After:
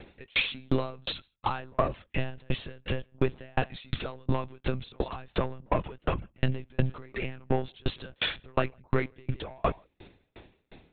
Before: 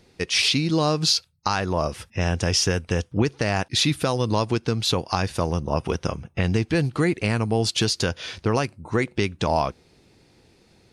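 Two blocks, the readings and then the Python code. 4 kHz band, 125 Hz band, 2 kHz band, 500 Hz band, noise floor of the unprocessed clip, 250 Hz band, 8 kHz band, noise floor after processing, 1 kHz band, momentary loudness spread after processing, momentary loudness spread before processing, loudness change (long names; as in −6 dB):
−12.0 dB, −8.5 dB, −7.0 dB, −7.5 dB, −59 dBFS, −10.0 dB, below −40 dB, −73 dBFS, −7.0 dB, 7 LU, 6 LU, −9.0 dB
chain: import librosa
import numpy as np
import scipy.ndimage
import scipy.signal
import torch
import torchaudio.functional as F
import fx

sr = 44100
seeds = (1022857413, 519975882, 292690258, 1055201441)

p1 = fx.peak_eq(x, sr, hz=310.0, db=-4.5, octaves=0.27)
p2 = fx.over_compress(p1, sr, threshold_db=-30.0, ratio=-1.0)
p3 = p1 + (p2 * librosa.db_to_amplitude(-1.0))
p4 = 10.0 ** (-15.5 / 20.0) * np.tanh(p3 / 10.0 ** (-15.5 / 20.0))
p5 = p4 + fx.echo_single(p4, sr, ms=158, db=-20.0, dry=0)
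p6 = fx.lpc_monotone(p5, sr, seeds[0], pitch_hz=130.0, order=16)
p7 = fx.tremolo_decay(p6, sr, direction='decaying', hz=2.8, depth_db=38)
y = p7 * librosa.db_to_amplitude(2.5)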